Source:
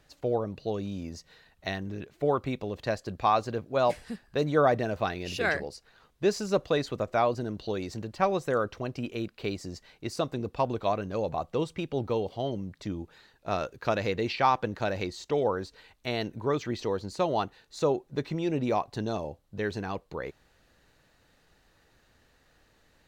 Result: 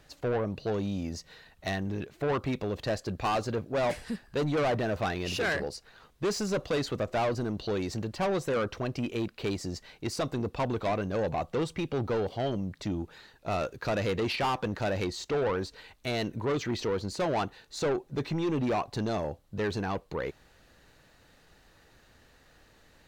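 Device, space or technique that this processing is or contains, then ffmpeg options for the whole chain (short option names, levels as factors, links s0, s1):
saturation between pre-emphasis and de-emphasis: -af "highshelf=f=5500:g=7,asoftclip=type=tanh:threshold=0.0355,highshelf=f=5500:g=-7,volume=1.68"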